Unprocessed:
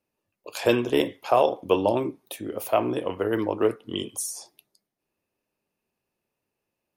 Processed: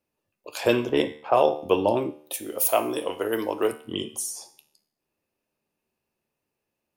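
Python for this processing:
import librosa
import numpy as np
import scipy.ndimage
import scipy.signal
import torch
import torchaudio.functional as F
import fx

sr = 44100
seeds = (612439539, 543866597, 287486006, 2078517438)

y = fx.env_lowpass(x, sr, base_hz=1000.0, full_db=-14.5, at=(0.89, 1.51))
y = fx.bass_treble(y, sr, bass_db=-10, treble_db=14, at=(2.33, 3.71), fade=0.02)
y = fx.comb_fb(y, sr, f0_hz=75.0, decay_s=0.56, harmonics='all', damping=0.0, mix_pct=60)
y = y * 10.0 ** (6.0 / 20.0)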